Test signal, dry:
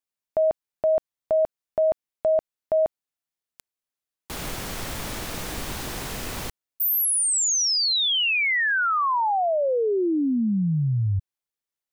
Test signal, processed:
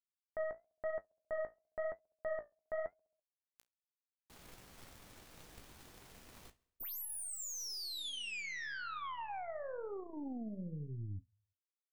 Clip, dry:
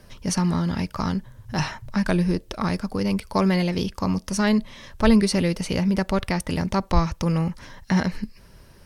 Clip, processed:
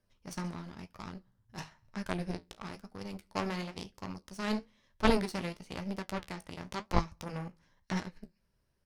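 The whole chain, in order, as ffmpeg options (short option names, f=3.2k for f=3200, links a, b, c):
-af "aecho=1:1:67|134|201|268|335:0.0841|0.0505|0.0303|0.0182|0.0109,aeval=exprs='0.631*(cos(1*acos(clip(val(0)/0.631,-1,1)))-cos(1*PI/2))+0.0631*(cos(2*acos(clip(val(0)/0.631,-1,1)))-cos(2*PI/2))+0.158*(cos(3*acos(clip(val(0)/0.631,-1,1)))-cos(3*PI/2))+0.0178*(cos(7*acos(clip(val(0)/0.631,-1,1)))-cos(7*PI/2))':c=same,flanger=delay=9.7:depth=8.3:regen=-51:speed=1:shape=sinusoidal,volume=2dB"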